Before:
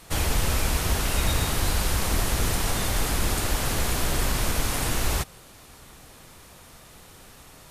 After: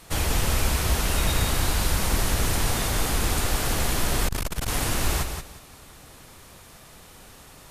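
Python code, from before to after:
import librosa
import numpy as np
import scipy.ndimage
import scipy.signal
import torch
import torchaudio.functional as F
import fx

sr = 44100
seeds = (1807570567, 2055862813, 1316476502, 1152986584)

y = fx.echo_feedback(x, sr, ms=177, feedback_pct=22, wet_db=-7)
y = fx.transformer_sat(y, sr, knee_hz=160.0, at=(4.28, 4.68))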